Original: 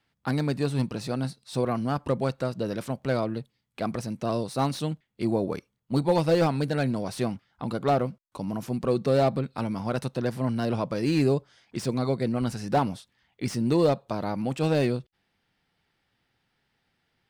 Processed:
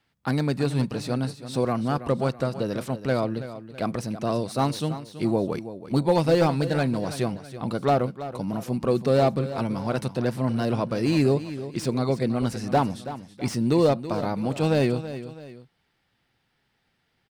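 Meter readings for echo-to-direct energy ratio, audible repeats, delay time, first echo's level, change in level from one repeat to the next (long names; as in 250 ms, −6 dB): −12.5 dB, 2, 328 ms, −13.0 dB, −7.5 dB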